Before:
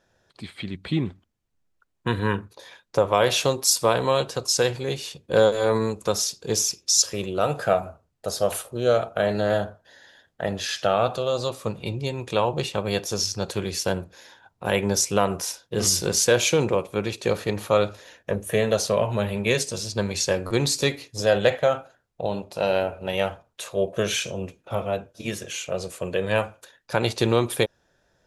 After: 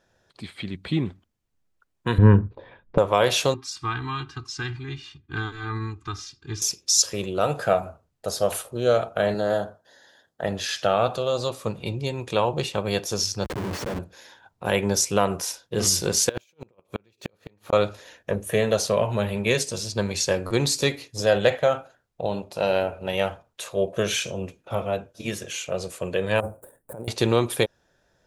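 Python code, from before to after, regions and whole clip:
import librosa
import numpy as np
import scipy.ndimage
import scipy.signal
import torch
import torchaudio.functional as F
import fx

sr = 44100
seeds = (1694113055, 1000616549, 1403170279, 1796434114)

y = fx.chain(x, sr, fx.lowpass(hz=3200.0, slope=24),
    fx.tilt_eq(slope=-4.5), at=(2.18, 2.98))
y = fx.chain(y, sr, fx.cheby1_bandstop(low_hz=250.0, high_hz=1200.0, order=2),
    fx.spacing_loss(db_at_10k=28),
    fx.comb(ms=2.5, depth=0.89), at=(3.54, 6.62))
y = fx.chain(y, sr, fx.highpass(hz=190.0, slope=6),
    fx.peak_eq(hz=2400.0, db=-9.0, octaves=0.83), at=(9.34, 10.44))
y = fx.chain(y, sr, fx.schmitt(flips_db=-32.5),
    fx.highpass(hz=83.0, slope=12),
    fx.high_shelf(hz=2700.0, db=-10.0), at=(13.44, 13.99))
y = fx.chain(y, sr, fx.over_compress(threshold_db=-24.0, ratio=-0.5),
    fx.gate_flip(shuts_db=-15.0, range_db=-37),
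    fx.resample_linear(factor=2), at=(16.29, 17.73))
y = fx.chain(y, sr, fx.median_filter(points=9),
    fx.curve_eq(hz=(580.0, 3000.0, 5800.0, 8800.0), db=(0, -27, -24, 7)),
    fx.over_compress(threshold_db=-34.0, ratio=-1.0), at=(26.4, 27.08))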